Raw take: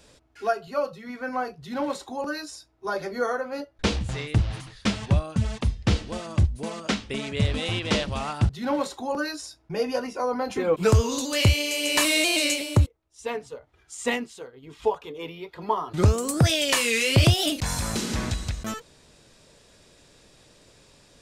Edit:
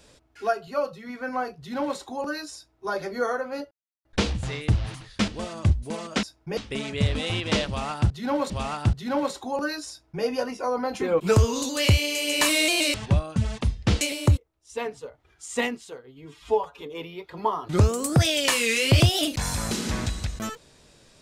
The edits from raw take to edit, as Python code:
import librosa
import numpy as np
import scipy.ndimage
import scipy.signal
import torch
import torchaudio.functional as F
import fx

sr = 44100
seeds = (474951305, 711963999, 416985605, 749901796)

y = fx.edit(x, sr, fx.insert_silence(at_s=3.71, length_s=0.34),
    fx.move(start_s=4.94, length_s=1.07, to_s=12.5),
    fx.repeat(start_s=8.06, length_s=0.83, count=2),
    fx.duplicate(start_s=9.46, length_s=0.34, to_s=6.96),
    fx.stretch_span(start_s=14.57, length_s=0.49, factor=1.5), tone=tone)